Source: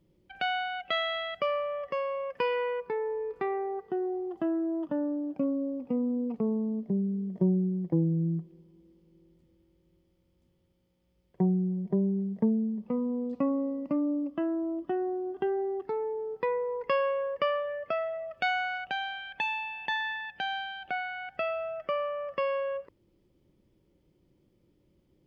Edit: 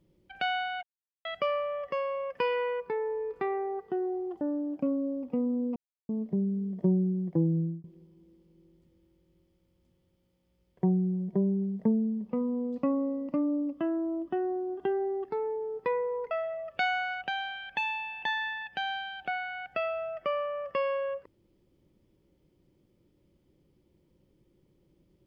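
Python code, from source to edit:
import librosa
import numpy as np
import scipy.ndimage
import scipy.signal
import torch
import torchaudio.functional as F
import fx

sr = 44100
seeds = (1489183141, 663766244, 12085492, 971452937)

y = fx.edit(x, sr, fx.silence(start_s=0.83, length_s=0.42),
    fx.cut(start_s=4.41, length_s=0.57),
    fx.silence(start_s=6.33, length_s=0.33),
    fx.fade_out_span(start_s=8.16, length_s=0.25),
    fx.cut(start_s=16.88, length_s=1.06), tone=tone)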